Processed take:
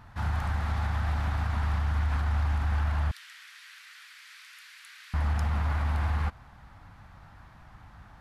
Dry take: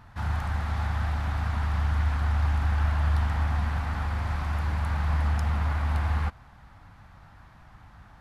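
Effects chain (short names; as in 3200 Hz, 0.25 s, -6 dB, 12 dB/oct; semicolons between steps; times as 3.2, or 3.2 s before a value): 3.11–5.14 Bessel high-pass 2900 Hz, order 6; limiter -20.5 dBFS, peak gain reduction 4.5 dB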